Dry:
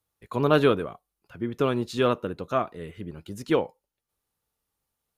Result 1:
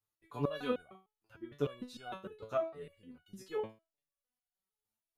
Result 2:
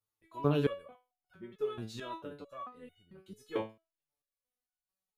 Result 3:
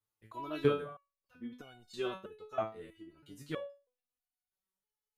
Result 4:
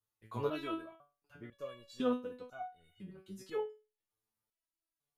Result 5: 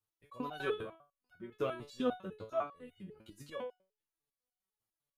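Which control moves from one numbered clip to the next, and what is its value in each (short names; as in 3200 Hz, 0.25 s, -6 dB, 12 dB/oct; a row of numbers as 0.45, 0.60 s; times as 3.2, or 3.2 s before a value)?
stepped resonator, rate: 6.6, 4.5, 3.1, 2, 10 Hz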